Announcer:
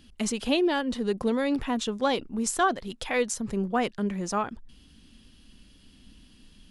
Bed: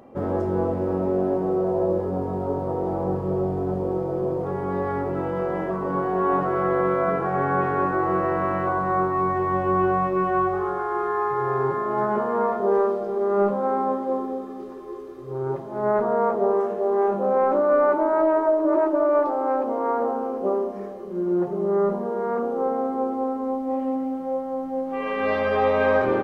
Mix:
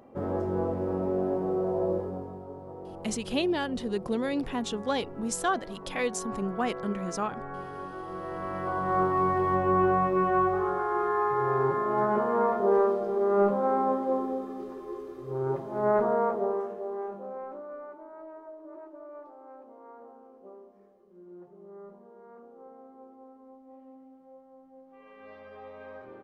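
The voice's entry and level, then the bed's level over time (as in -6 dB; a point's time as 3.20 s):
2.85 s, -3.5 dB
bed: 1.95 s -5.5 dB
2.46 s -16.5 dB
8.07 s -16.5 dB
9.03 s -2.5 dB
16.04 s -2.5 dB
17.95 s -25.5 dB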